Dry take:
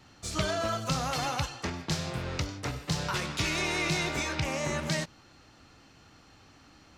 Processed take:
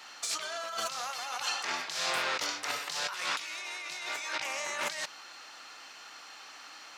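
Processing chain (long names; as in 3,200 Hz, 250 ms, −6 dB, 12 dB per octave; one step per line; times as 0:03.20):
high-pass filter 920 Hz 12 dB per octave
compressor whose output falls as the input rises −42 dBFS, ratio −1
level +6 dB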